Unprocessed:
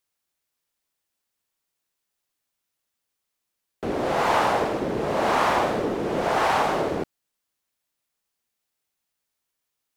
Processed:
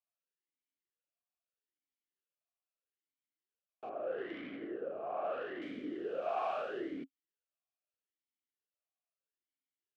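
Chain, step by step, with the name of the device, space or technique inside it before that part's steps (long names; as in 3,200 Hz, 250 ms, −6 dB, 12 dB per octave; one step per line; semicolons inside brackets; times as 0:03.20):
0:03.89–0:05.62: low-pass filter 1,600 Hz 12 dB per octave
talk box (tube saturation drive 20 dB, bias 0.55; formant filter swept between two vowels a-i 0.78 Hz)
level −2 dB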